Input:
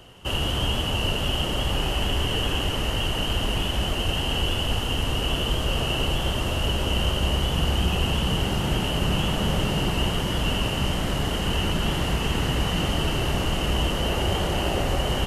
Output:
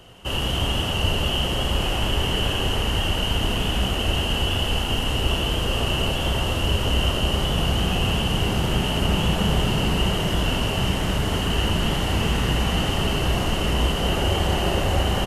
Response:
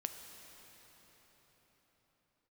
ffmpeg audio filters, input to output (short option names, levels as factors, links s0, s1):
-filter_complex "[0:a]aecho=1:1:32.07|78.72:0.251|0.316[s0];[1:a]atrim=start_sample=2205,asetrate=66150,aresample=44100[s1];[s0][s1]afir=irnorm=-1:irlink=0,volume=2"